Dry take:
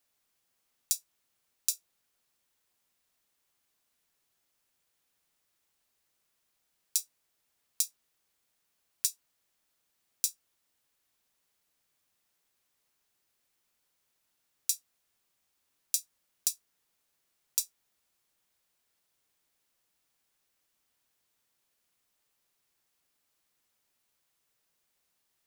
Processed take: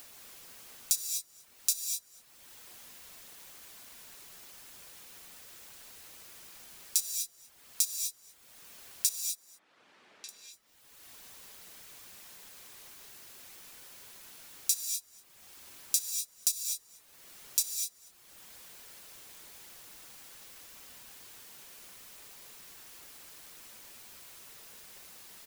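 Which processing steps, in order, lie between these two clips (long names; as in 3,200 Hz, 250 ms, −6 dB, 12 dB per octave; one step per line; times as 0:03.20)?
reverb reduction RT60 0.54 s
in parallel at −2.5 dB: upward compression, threshold −36 dBFS
on the sum: brickwall limiter −9 dBFS, peak gain reduction 10 dB
0:09.09–0:10.29: band-pass filter 220–2,400 Hz
single-tap delay 240 ms −23 dB
reverb whose tail is shaped and stops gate 270 ms rising, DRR 3 dB
level +4.5 dB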